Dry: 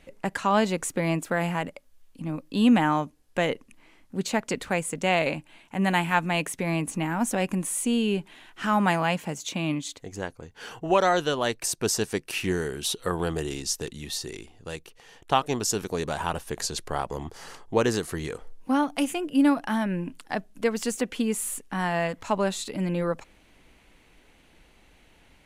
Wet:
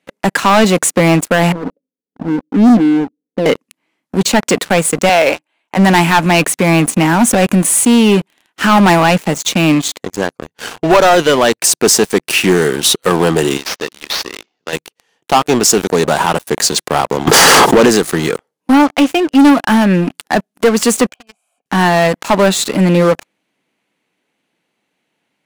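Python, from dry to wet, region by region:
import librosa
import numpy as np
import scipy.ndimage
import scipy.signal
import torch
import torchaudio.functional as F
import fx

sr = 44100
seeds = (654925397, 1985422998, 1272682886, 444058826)

y = fx.chain(x, sr, fx.law_mismatch(coded='mu'),
    fx.ladder_lowpass(hz=420.0, resonance_pct=60),
    fx.comb(ms=4.1, depth=0.93), at=(1.52, 3.46))
y = fx.chain(y, sr, fx.highpass(hz=410.0, slope=12),
    fx.high_shelf(hz=3700.0, db=-7.5), at=(5.09, 5.77))
y = fx.chain(y, sr, fx.cvsd(bps=32000),
    fx.highpass(hz=560.0, slope=6), at=(13.57, 14.73))
y = fx.chain(y, sr, fx.highpass(hz=120.0, slope=12),
    fx.env_flatten(amount_pct=100), at=(17.27, 17.86))
y = fx.chain(y, sr, fx.law_mismatch(coded='A'),
    fx.lowpass(hz=5700.0, slope=12), at=(18.79, 19.39))
y = fx.chain(y, sr, fx.vowel_filter(vowel='a'),
    fx.comb(ms=1.3, depth=0.62),
    fx.band_squash(depth_pct=70), at=(21.09, 21.66))
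y = scipy.signal.sosfilt(scipy.signal.butter(4, 150.0, 'highpass', fs=sr, output='sos'), y)
y = fx.leveller(y, sr, passes=5)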